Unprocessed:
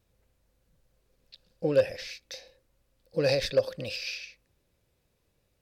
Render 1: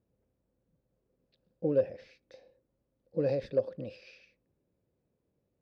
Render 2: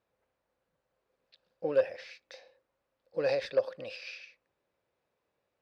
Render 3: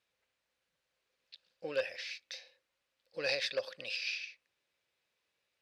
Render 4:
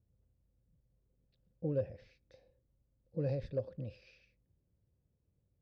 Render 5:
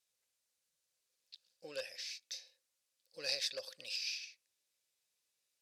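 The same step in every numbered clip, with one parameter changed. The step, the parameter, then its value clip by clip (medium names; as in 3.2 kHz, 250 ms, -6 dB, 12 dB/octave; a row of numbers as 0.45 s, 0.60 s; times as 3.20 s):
band-pass filter, frequency: 260 Hz, 960 Hz, 2.5 kHz, 100 Hz, 7.2 kHz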